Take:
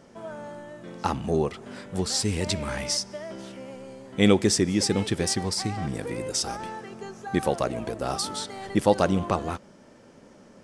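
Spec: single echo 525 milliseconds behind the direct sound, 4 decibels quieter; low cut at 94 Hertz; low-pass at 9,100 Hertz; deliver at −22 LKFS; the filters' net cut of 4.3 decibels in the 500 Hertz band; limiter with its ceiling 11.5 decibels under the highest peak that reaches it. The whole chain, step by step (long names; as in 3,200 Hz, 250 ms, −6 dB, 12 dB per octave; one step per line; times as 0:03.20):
high-pass filter 94 Hz
low-pass filter 9,100 Hz
parametric band 500 Hz −5.5 dB
brickwall limiter −17 dBFS
single-tap delay 525 ms −4 dB
level +8 dB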